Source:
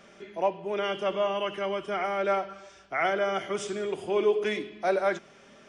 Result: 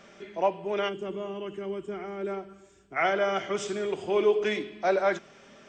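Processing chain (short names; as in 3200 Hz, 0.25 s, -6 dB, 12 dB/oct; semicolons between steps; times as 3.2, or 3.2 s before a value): spectral gain 0.89–2.97, 440–6500 Hz -13 dB; gain +1 dB; MP2 64 kbps 32000 Hz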